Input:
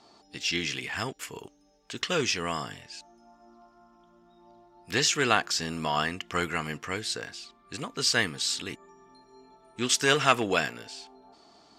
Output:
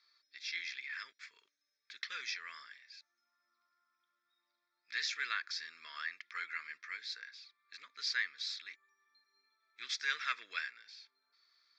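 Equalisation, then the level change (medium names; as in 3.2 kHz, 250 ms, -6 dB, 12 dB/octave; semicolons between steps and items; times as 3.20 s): ladder band-pass 3.1 kHz, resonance 25%; distance through air 120 m; static phaser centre 2.9 kHz, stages 6; +8.0 dB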